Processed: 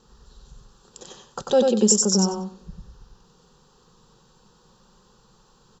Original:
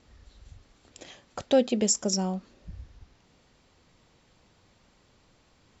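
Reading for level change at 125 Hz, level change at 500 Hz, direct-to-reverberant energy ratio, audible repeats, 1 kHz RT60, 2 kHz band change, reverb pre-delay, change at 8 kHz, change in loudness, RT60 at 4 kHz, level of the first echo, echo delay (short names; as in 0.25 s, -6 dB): +7.0 dB, +5.5 dB, none, 3, none, +0.5 dB, none, n/a, +6.5 dB, none, -3.5 dB, 94 ms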